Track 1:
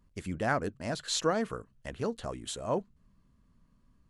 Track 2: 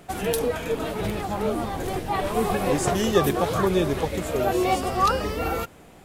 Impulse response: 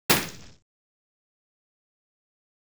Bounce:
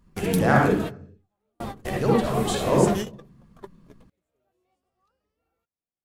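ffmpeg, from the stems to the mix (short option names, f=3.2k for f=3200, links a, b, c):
-filter_complex "[0:a]acontrast=83,volume=-1dB,asplit=3[a][b][c];[a]atrim=end=0.76,asetpts=PTS-STARTPTS,afade=t=out:st=0.756:d=0.004:c=hsin[d];[b]atrim=start=0.76:end=1.6,asetpts=PTS-STARTPTS,volume=0[e];[c]atrim=start=1.6,asetpts=PTS-STARTPTS,afade=t=in:d=0.004:c=hsin[f];[d][e][f]concat=n=3:v=0:a=1,asplit=3[g][h][i];[h]volume=-20dB[j];[1:a]volume=-3.5dB[k];[i]apad=whole_len=266436[l];[k][l]sidechaingate=range=-49dB:threshold=-52dB:ratio=16:detection=peak[m];[2:a]atrim=start_sample=2205[n];[j][n]afir=irnorm=-1:irlink=0[o];[g][m][o]amix=inputs=3:normalize=0"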